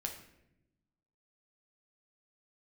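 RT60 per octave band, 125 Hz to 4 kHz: 1.5, 1.4, 1.0, 0.70, 0.75, 0.60 s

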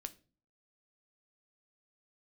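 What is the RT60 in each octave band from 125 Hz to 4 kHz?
0.60, 0.60, 0.45, 0.30, 0.30, 0.30 s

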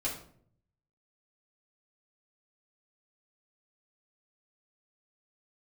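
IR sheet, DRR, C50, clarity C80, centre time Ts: -5.5 dB, 6.5 dB, 11.0 dB, 27 ms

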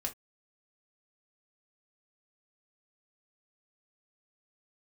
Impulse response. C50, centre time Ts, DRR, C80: 16.5 dB, 10 ms, 1.0 dB, 35.5 dB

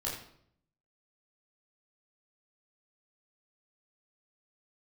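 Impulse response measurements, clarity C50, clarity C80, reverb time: 4.0 dB, 7.0 dB, 0.65 s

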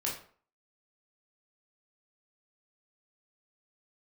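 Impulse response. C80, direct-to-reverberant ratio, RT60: 10.5 dB, -4.0 dB, 0.50 s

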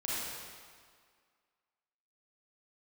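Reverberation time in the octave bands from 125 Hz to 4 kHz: 1.6, 1.8, 1.8, 2.0, 1.8, 1.6 s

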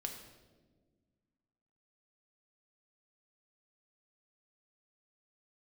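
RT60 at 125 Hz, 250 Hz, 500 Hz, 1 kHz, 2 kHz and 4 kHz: 2.2, 2.4, 1.8, 1.1, 0.95, 0.90 s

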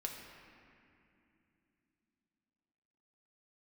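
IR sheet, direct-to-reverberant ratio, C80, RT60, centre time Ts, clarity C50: 0.0 dB, 4.0 dB, 2.8 s, 80 ms, 3.0 dB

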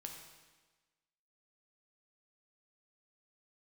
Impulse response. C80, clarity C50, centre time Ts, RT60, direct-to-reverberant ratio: 6.0 dB, 4.5 dB, 42 ms, 1.3 s, 2.0 dB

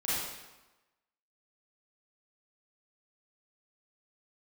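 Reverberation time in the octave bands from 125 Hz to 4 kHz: 0.95, 1.1, 1.0, 1.1, 1.0, 0.90 s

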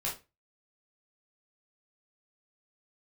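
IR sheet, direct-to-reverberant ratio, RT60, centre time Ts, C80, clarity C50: -5.0 dB, 0.25 s, 26 ms, 16.0 dB, 8.0 dB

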